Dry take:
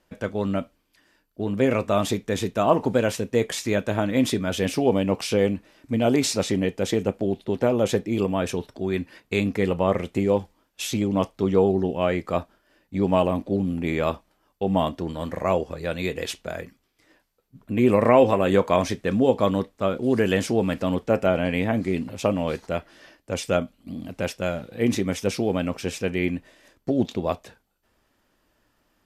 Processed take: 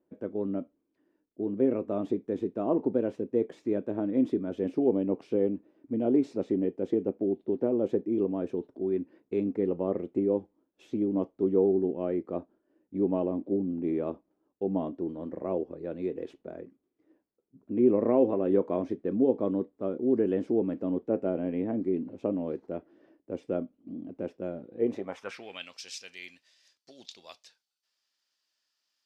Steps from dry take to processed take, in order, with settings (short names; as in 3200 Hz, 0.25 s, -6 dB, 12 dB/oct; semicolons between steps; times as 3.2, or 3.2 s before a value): band-pass sweep 330 Hz -> 4900 Hz, 24.75–25.78